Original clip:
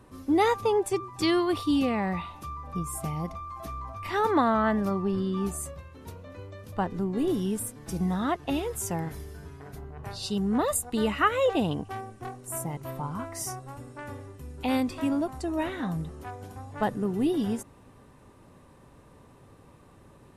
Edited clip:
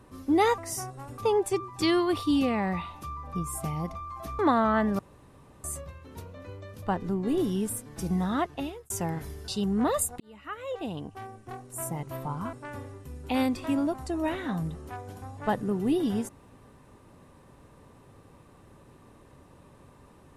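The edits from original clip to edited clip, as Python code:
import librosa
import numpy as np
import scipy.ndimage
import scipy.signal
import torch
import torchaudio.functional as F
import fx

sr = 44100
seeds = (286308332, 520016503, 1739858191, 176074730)

y = fx.edit(x, sr, fx.cut(start_s=3.79, length_s=0.5),
    fx.room_tone_fill(start_s=4.89, length_s=0.65),
    fx.fade_out_span(start_s=8.31, length_s=0.49),
    fx.cut(start_s=9.38, length_s=0.84),
    fx.fade_in_span(start_s=10.94, length_s=1.8),
    fx.move(start_s=13.27, length_s=0.6, to_s=0.58), tone=tone)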